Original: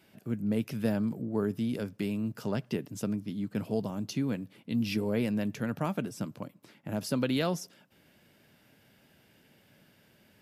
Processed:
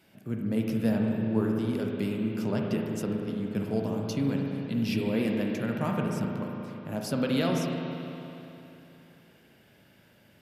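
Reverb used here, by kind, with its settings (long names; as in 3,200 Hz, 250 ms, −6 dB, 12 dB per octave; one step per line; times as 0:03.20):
spring reverb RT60 3.1 s, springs 36/60 ms, chirp 40 ms, DRR 0 dB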